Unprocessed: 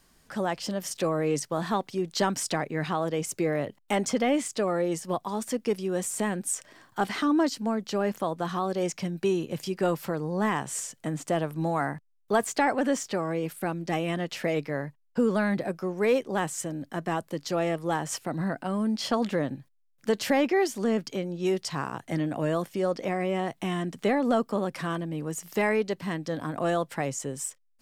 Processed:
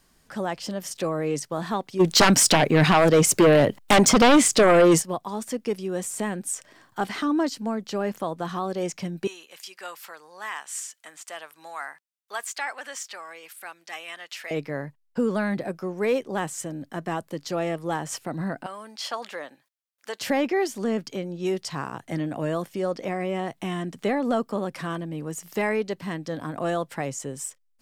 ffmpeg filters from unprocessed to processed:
ffmpeg -i in.wav -filter_complex "[0:a]asplit=3[link_01][link_02][link_03];[link_01]afade=type=out:start_time=1.99:duration=0.02[link_04];[link_02]aeval=exprs='0.282*sin(PI/2*3.55*val(0)/0.282)':channel_layout=same,afade=type=in:start_time=1.99:duration=0.02,afade=type=out:start_time=5.01:duration=0.02[link_05];[link_03]afade=type=in:start_time=5.01:duration=0.02[link_06];[link_04][link_05][link_06]amix=inputs=3:normalize=0,asettb=1/sr,asplit=3[link_07][link_08][link_09];[link_07]atrim=end=9.274[link_10];[link_08]atrim=start=9.27:end=14.51,asetpts=PTS-STARTPTS,afade=type=in:duration=0.004:curve=qsin,afade=type=out:start_time=5.236:duration=0.004:curve=qsin,highpass=1300[link_11];[link_09]atrim=start=14.506[link_12];[link_10][link_11]acrossfade=duration=0.004:curve1=hsin:curve2=qsin[link_13];[link_13][link_12]acrossfade=duration=0.004:curve1=qsin:curve2=hsin,asettb=1/sr,asplit=3[link_14][link_15][link_16];[link_14]atrim=end=18.664[link_17];[link_15]atrim=start=18.66:end=20.21,asetpts=PTS-STARTPTS,afade=type=in:duration=0.004:curve=qsin,afade=type=out:start_time=1.546:duration=0.004:curve=qsin,highpass=770[link_18];[link_16]atrim=start=20.206[link_19];[link_17][link_18]acrossfade=duration=0.004:curve1=hsin:curve2=qsin[link_20];[link_20][link_19]acrossfade=duration=0.004:curve1=qsin:curve2=hsin" out.wav

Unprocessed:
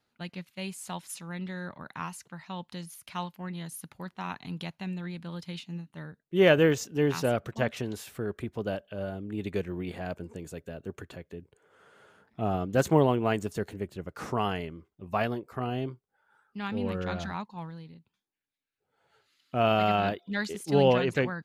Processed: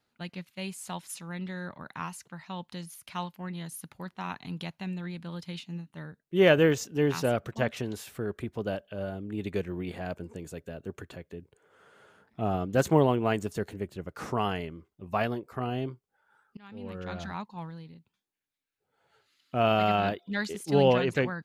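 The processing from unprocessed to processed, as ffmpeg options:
ffmpeg -i in.wav -filter_complex "[0:a]asplit=2[link_01][link_02];[link_01]atrim=end=16.57,asetpts=PTS-STARTPTS,afade=type=out:start_time=16.566:duration=0.004:curve=hsin:silence=0.0749894[link_03];[link_02]atrim=start=16.57,asetpts=PTS-STARTPTS,afade=type=in:duration=0.94:silence=0.0749894[link_04];[link_03][link_04]concat=n=2:v=0:a=1" out.wav

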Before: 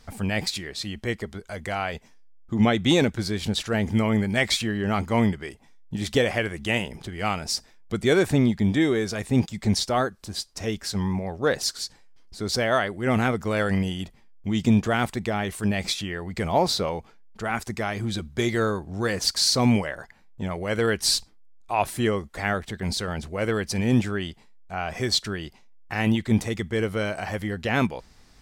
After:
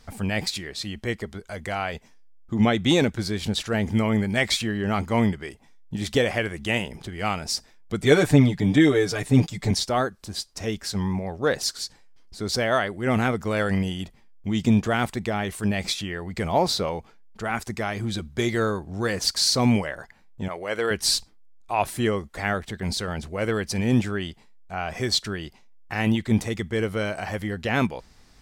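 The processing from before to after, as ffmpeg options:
ffmpeg -i in.wav -filter_complex "[0:a]asettb=1/sr,asplit=3[link_01][link_02][link_03];[link_01]atrim=end=8.014[link_04];[link_02]atrim=start=8.01:end=9.71,asetpts=PTS-STARTPTS,afade=type=in:duration=0.004:curve=qsin,afade=type=out:start_time=1.696:duration=0.004:curve=qsin,aecho=1:1:6.8:0.99,atrim=end_sample=74970[link_05];[link_03]atrim=start=9.706[link_06];[link_04][link_05]acrossfade=duration=0.004:curve1=hsin:curve2=qsin[link_07];[link_07][link_06]acrossfade=duration=0.004:curve1=qsin:curve2=hsin,asettb=1/sr,asplit=3[link_08][link_09][link_10];[link_08]atrim=end=20.484[link_11];[link_09]atrim=start=20.48:end=20.91,asetpts=PTS-STARTPTS,afade=type=in:duration=0.004:curve=qsin,afade=type=out:start_time=0.426:duration=0.004:curve=qsin,bass=frequency=250:gain=-15,treble=frequency=4000:gain=-3[link_12];[link_10]atrim=start=20.906[link_13];[link_11][link_12]acrossfade=duration=0.004:curve1=hsin:curve2=qsin[link_14];[link_14][link_13]acrossfade=duration=0.004:curve1=qsin:curve2=hsin" out.wav

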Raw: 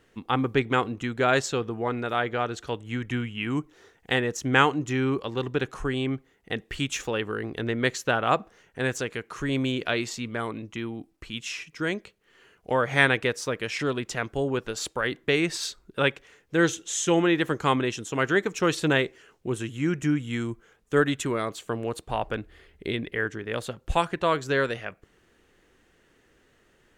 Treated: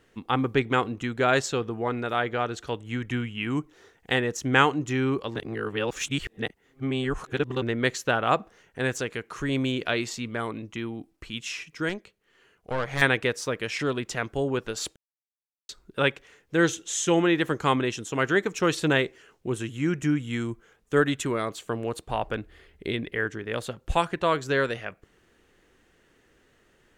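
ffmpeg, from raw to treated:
ffmpeg -i in.wav -filter_complex "[0:a]asettb=1/sr,asplit=3[link_01][link_02][link_03];[link_01]atrim=end=11.894[link_04];[link_02]atrim=start=11.89:end=13.02,asetpts=PTS-STARTPTS,afade=type=in:duration=0.004:curve=qsin,afade=type=out:start_time=1.126:duration=0.004:curve=qsin,aeval=exprs='(tanh(11.2*val(0)+0.7)-tanh(0.7))/11.2':channel_layout=same[link_05];[link_03]atrim=start=13.016[link_06];[link_04][link_05]acrossfade=duration=0.004:curve1=hsin:curve2=qsin[link_07];[link_07][link_06]acrossfade=duration=0.004:curve1=qsin:curve2=hsin,asplit=5[link_08][link_09][link_10][link_11][link_12];[link_08]atrim=end=5.362[link_13];[link_09]atrim=start=5.358:end=7.622,asetpts=PTS-STARTPTS,areverse[link_14];[link_10]atrim=start=7.618:end=14.96,asetpts=PTS-STARTPTS,afade=type=out:start_time=7.338:duration=0.004:curve=hsin[link_15];[link_11]atrim=start=14.96:end=15.69,asetpts=PTS-STARTPTS,volume=0[link_16];[link_12]atrim=start=15.69,asetpts=PTS-STARTPTS,afade=type=in:duration=0.004:curve=hsin[link_17];[link_13][link_14]acrossfade=duration=0.004:curve1=hsin:curve2=hsin[link_18];[link_15][link_16][link_17]concat=n=3:v=0:a=1[link_19];[link_18][link_19]acrossfade=duration=0.004:curve1=hsin:curve2=hsin" out.wav

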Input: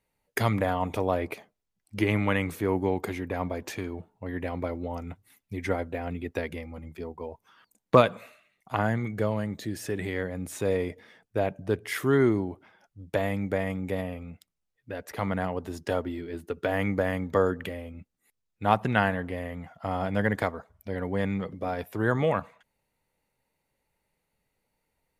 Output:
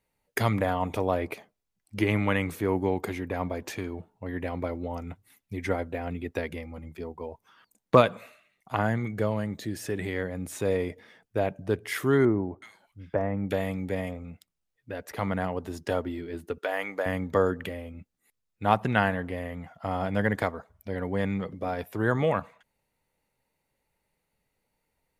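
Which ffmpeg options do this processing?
ffmpeg -i in.wav -filter_complex "[0:a]asettb=1/sr,asplit=3[link_01][link_02][link_03];[link_01]atrim=end=12.254[link_04];[link_02]atrim=start=12.25:end=14.25,asetpts=PTS-STARTPTS,afade=type=in:duration=0.004:curve=qsin,afade=type=out:start_time=1.996:duration=0.004:curve=qsin,acrossover=split=1800[link_05][link_06];[link_06]adelay=370[link_07];[link_05][link_07]amix=inputs=2:normalize=0,atrim=end_sample=88200[link_08];[link_03]atrim=start=14.246[link_09];[link_04][link_08]acrossfade=duration=0.004:curve1=hsin:curve2=qsin[link_10];[link_10][link_09]acrossfade=duration=0.004:curve1=qsin:curve2=hsin,asettb=1/sr,asplit=3[link_11][link_12][link_13];[link_11]atrim=end=16.584[link_14];[link_12]atrim=start=16.58:end=17.06,asetpts=PTS-STARTPTS,afade=type=in:duration=0.004:curve=qsin,afade=type=out:start_time=0.476:duration=0.004:curve=qsin,highpass=530[link_15];[link_13]atrim=start=17.056[link_16];[link_14][link_15]acrossfade=duration=0.004:curve1=hsin:curve2=qsin[link_17];[link_17][link_16]acrossfade=duration=0.004:curve1=qsin:curve2=hsin" out.wav

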